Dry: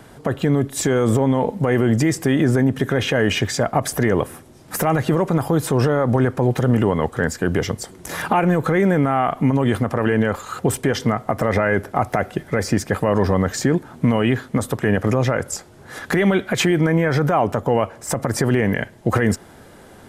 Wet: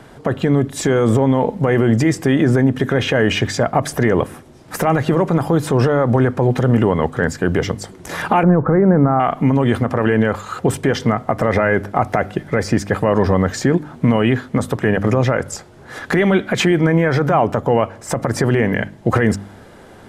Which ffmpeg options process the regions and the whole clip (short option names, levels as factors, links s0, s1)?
-filter_complex "[0:a]asettb=1/sr,asplit=3[s0][s1][s2];[s0]atrim=end=8.434[s3];[s1]atrim=start=8.43:end=9.2,asetpts=PTS-STARTPTS,afade=t=in:d=0.004:c=qsin,afade=t=out:st=0.766:d=0.004:c=qsin,lowpass=f=1400:w=0.5412,lowpass=f=1400:w=1.3066,lowshelf=f=170:g=5.5[s4];[s2]atrim=start=9.196[s5];[s3][s4]acrossfade=d=0.004:c1=hsin:c2=qsin[s6];[s6][s5]acrossfade=d=0.004:c1=qsin:c2=hsin,highshelf=f=8400:g=-11.5,bandreject=f=50.08:t=h:w=4,bandreject=f=100.16:t=h:w=4,bandreject=f=150.24:t=h:w=4,bandreject=f=200.32:t=h:w=4,bandreject=f=250.4:t=h:w=4,bandreject=f=300.48:t=h:w=4,volume=1.41"